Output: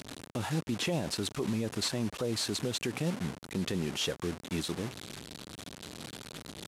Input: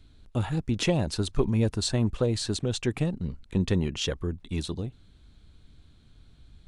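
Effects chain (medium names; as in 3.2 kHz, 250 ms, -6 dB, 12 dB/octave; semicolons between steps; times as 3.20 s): one-bit delta coder 64 kbps, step -33.5 dBFS; high-pass 160 Hz 12 dB/octave; peak limiter -22.5 dBFS, peak gain reduction 10 dB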